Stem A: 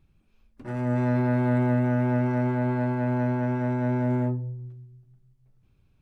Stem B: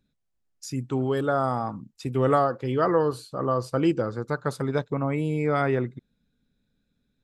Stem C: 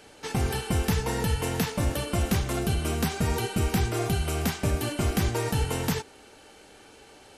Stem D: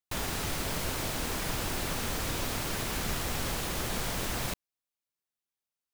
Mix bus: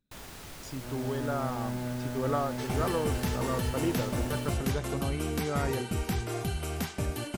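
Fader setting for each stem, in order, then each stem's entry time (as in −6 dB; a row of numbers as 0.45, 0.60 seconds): −12.0, −9.0, −6.0, −12.0 decibels; 0.15, 0.00, 2.35, 0.00 seconds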